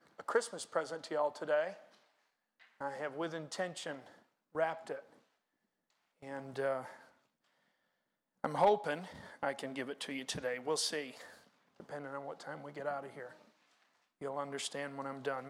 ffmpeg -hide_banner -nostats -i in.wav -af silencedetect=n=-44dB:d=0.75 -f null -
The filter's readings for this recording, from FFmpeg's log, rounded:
silence_start: 1.74
silence_end: 2.81 | silence_duration: 1.07
silence_start: 5.00
silence_end: 6.23 | silence_duration: 1.23
silence_start: 6.93
silence_end: 8.44 | silence_duration: 1.51
silence_start: 13.31
silence_end: 14.21 | silence_duration: 0.90